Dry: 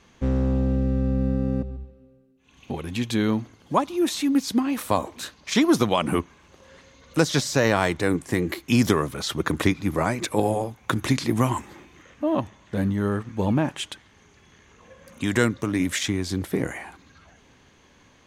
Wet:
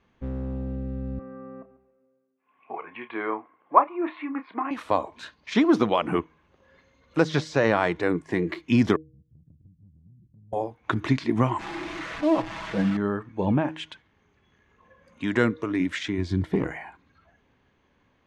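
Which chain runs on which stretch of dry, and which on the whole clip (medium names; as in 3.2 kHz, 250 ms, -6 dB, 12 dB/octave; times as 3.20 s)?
1.19–4.71 s: cabinet simulation 410–2300 Hz, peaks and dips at 700 Hz +3 dB, 1.1 kHz +9 dB, 2.2 kHz +4 dB + doubling 30 ms -11 dB
8.96–10.53 s: inverse Chebyshev band-stop 550–9400 Hz, stop band 60 dB + compression 10:1, threshold -41 dBFS
11.59–12.97 s: one-bit delta coder 64 kbps, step -26.5 dBFS + comb 6.1 ms, depth 52%
16.18–16.77 s: bass shelf 170 Hz +8 dB + overload inside the chain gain 14 dB
whole clip: Bessel low-pass 2.4 kHz, order 2; de-hum 157.5 Hz, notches 3; spectral noise reduction 9 dB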